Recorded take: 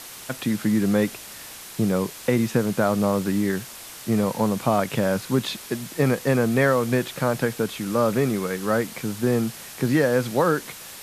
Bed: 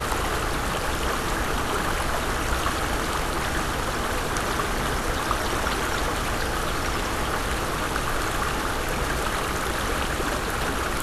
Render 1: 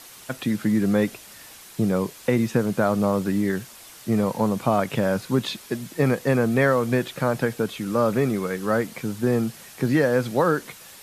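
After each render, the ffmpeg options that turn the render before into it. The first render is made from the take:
-af "afftdn=nr=6:nf=-40"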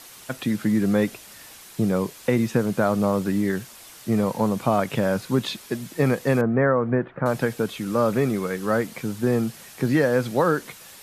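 -filter_complex "[0:a]asettb=1/sr,asplit=3[s0][s1][s2];[s0]atrim=end=6.414[s3];[s1]atrim=start=6.41:end=7.26,asetpts=PTS-STARTPTS,afade=t=in:d=0.004:c=qsin,afade=t=out:st=0.846:d=0.004:c=qsin,lowpass=f=1700:w=0.5412,lowpass=f=1700:w=1.3066[s4];[s2]atrim=start=7.256[s5];[s3][s4]acrossfade=d=0.004:c1=hsin:c2=qsin[s6];[s6][s5]acrossfade=d=0.004:c1=qsin:c2=hsin"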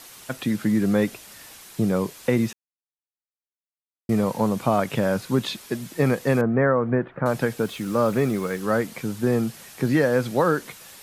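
-filter_complex "[0:a]asettb=1/sr,asplit=3[s0][s1][s2];[s0]atrim=end=7.624[s3];[s1]atrim=start=7.62:end=8.62,asetpts=PTS-STARTPTS,afade=t=in:d=0.004:c=qsin,afade=t=out:st=0.996:d=0.004:c=qsin,acrusher=bits=7:mix=0:aa=0.5[s4];[s2]atrim=start=8.616[s5];[s3][s4]acrossfade=d=0.004:c1=hsin:c2=qsin[s6];[s6][s5]acrossfade=d=0.004:c1=qsin:c2=hsin,asplit=3[s7][s8][s9];[s7]atrim=end=2.53,asetpts=PTS-STARTPTS,afade=t=out:st=2.526:d=0.004:c=hsin[s10];[s8]atrim=start=2.53:end=4.09,asetpts=PTS-STARTPTS,volume=0[s11];[s9]atrim=start=4.09,asetpts=PTS-STARTPTS,afade=t=in:d=0.004:c=hsin[s12];[s10][s11][s12]concat=n=3:v=0:a=1"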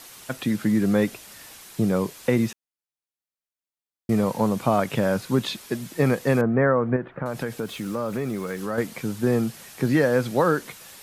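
-filter_complex "[0:a]asettb=1/sr,asplit=3[s0][s1][s2];[s0]atrim=end=6.964[s3];[s1]atrim=start=6.96:end=8.78,asetpts=PTS-STARTPTS,afade=t=in:d=0.004:c=qsin,afade=t=out:st=1.816:d=0.004:c=qsin,acompressor=threshold=0.0501:ratio=2.5:attack=3.2:release=140:knee=1:detection=peak[s4];[s2]atrim=start=8.776[s5];[s3][s4]acrossfade=d=0.004:c1=hsin:c2=qsin[s6];[s6][s5]acrossfade=d=0.004:c1=qsin:c2=hsin"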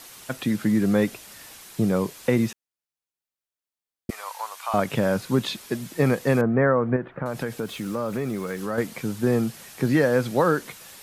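-filter_complex "[0:a]asettb=1/sr,asplit=3[s0][s1][s2];[s0]atrim=end=4.104[s3];[s1]atrim=start=4.1:end=4.74,asetpts=PTS-STARTPTS,afade=t=in:d=0.004:c=qsin,afade=t=out:st=0.636:d=0.004:c=qsin,highpass=f=920:w=0.5412,highpass=f=920:w=1.3066[s4];[s2]atrim=start=4.736[s5];[s3][s4]acrossfade=d=0.004:c1=hsin:c2=qsin[s6];[s6][s5]acrossfade=d=0.004:c1=qsin:c2=hsin"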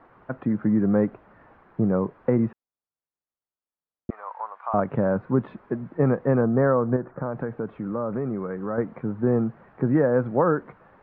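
-af "lowpass=f=1400:w=0.5412,lowpass=f=1400:w=1.3066"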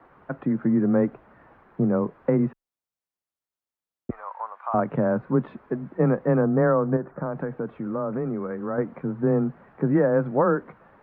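-af "afreqshift=15"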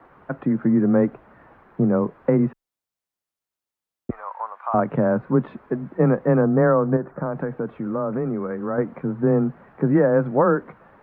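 -af "volume=1.41"

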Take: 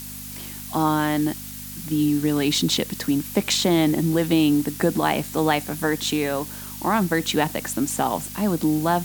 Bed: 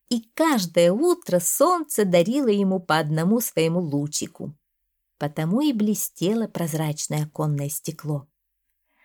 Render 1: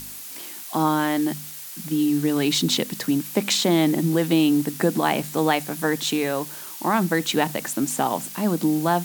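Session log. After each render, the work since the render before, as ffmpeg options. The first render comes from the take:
-af "bandreject=f=50:t=h:w=4,bandreject=f=100:t=h:w=4,bandreject=f=150:t=h:w=4,bandreject=f=200:t=h:w=4,bandreject=f=250:t=h:w=4"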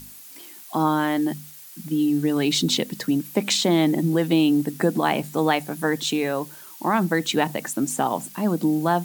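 -af "afftdn=nr=8:nf=-37"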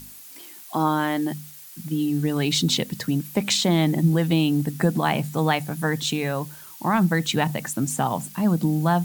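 -af "asubboost=boost=8.5:cutoff=110"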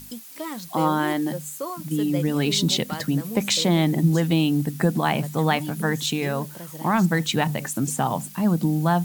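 -filter_complex "[1:a]volume=0.211[s0];[0:a][s0]amix=inputs=2:normalize=0"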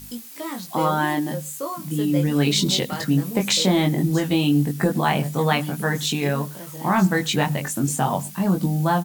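-filter_complex "[0:a]asplit=2[s0][s1];[s1]adelay=21,volume=0.708[s2];[s0][s2]amix=inputs=2:normalize=0,asplit=2[s3][s4];[s4]adelay=105,volume=0.0562,highshelf=f=4000:g=-2.36[s5];[s3][s5]amix=inputs=2:normalize=0"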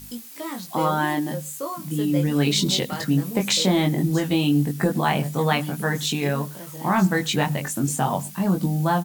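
-af "volume=0.891"

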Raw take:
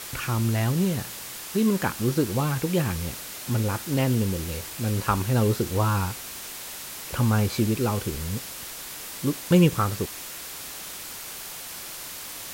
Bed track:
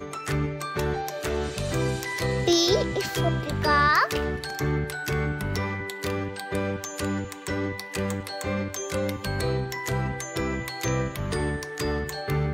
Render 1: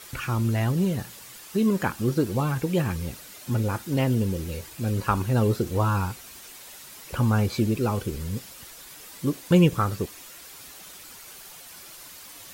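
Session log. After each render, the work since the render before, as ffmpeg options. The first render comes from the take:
-af "afftdn=nr=9:nf=-38"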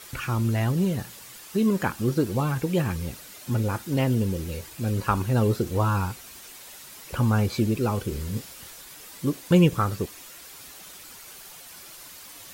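-filter_complex "[0:a]asettb=1/sr,asplit=3[s0][s1][s2];[s0]atrim=end=8.084[s3];[s1]atrim=start=8.08:end=8.81,asetpts=PTS-STARTPTS,afade=t=in:d=0.004:c=qsin,afade=t=out:st=0.726:d=0.004:c=qsin,asplit=2[s4][s5];[s5]adelay=28,volume=0.447[s6];[s4][s6]amix=inputs=2:normalize=0,atrim=end_sample=32193[s7];[s2]atrim=start=8.806[s8];[s3][s7]acrossfade=d=0.004:c1=hsin:c2=qsin[s9];[s9][s8]acrossfade=d=0.004:c1=qsin:c2=hsin"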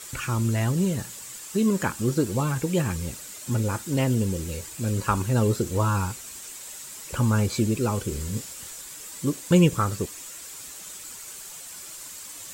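-af "equalizer=f=7600:w=2.2:g=11.5,bandreject=f=750:w=12"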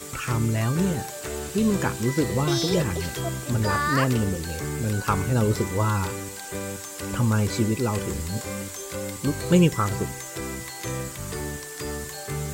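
-filter_complex "[1:a]volume=0.562[s0];[0:a][s0]amix=inputs=2:normalize=0"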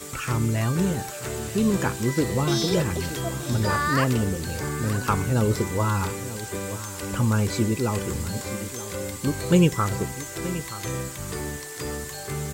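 -af "aecho=1:1:927:0.2"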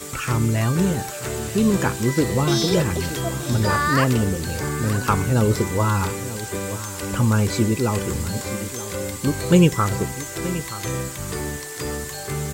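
-af "volume=1.5"

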